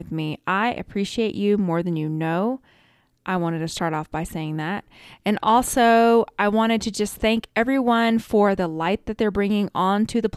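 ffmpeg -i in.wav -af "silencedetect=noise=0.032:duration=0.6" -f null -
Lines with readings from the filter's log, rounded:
silence_start: 2.56
silence_end: 3.26 | silence_duration: 0.70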